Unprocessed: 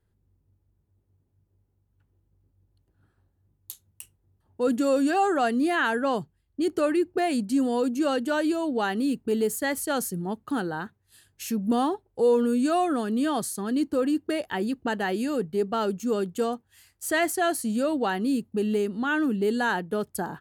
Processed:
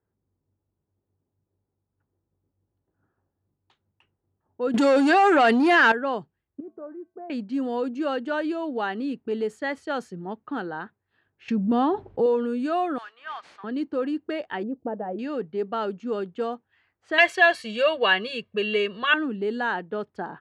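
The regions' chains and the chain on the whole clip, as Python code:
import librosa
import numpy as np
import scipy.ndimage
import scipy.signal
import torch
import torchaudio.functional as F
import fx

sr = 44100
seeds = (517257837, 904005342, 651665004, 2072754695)

y = fx.chain(x, sr, fx.high_shelf(hz=3000.0, db=10.0),
    fx.leveller(passes=2),
    fx.env_flatten(amount_pct=100), at=(4.74, 5.92))
y = fx.chain(y, sr, fx.lowpass(hz=1100.0, slope=24),
    fx.comb_fb(f0_hz=220.0, decay_s=0.39, harmonics='odd', damping=0.0, mix_pct=80), at=(6.6, 7.3))
y = fx.chain(y, sr, fx.bass_treble(bass_db=9, treble_db=-4),
    fx.env_flatten(amount_pct=50), at=(11.48, 12.26))
y = fx.chain(y, sr, fx.highpass(hz=1000.0, slope=24),
    fx.peak_eq(hz=4300.0, db=-3.0, octaves=1.2),
    fx.mod_noise(seeds[0], snr_db=10), at=(12.98, 13.64))
y = fx.chain(y, sr, fx.lowpass_res(hz=560.0, q=1.6),
    fx.notch(hz=390.0, q=5.0), at=(14.63, 15.19))
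y = fx.chain(y, sr, fx.peak_eq(hz=2800.0, db=15.0, octaves=1.7),
    fx.comb(ms=1.8, depth=1.0),
    fx.overload_stage(gain_db=6.5), at=(17.18, 19.14))
y = fx.highpass(y, sr, hz=310.0, slope=6)
y = fx.env_lowpass(y, sr, base_hz=1400.0, full_db=-23.0)
y = scipy.signal.sosfilt(scipy.signal.butter(2, 3000.0, 'lowpass', fs=sr, output='sos'), y)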